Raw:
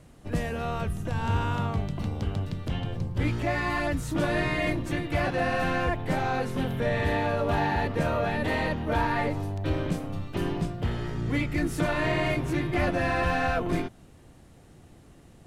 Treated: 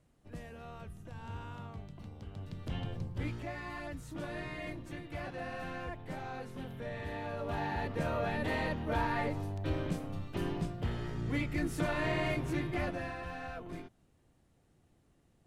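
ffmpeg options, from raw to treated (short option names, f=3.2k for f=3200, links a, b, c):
-af "volume=1.5dB,afade=t=in:st=2.31:d=0.5:silence=0.298538,afade=t=out:st=2.81:d=0.73:silence=0.398107,afade=t=in:st=7.11:d=1.17:silence=0.398107,afade=t=out:st=12.59:d=0.59:silence=0.316228"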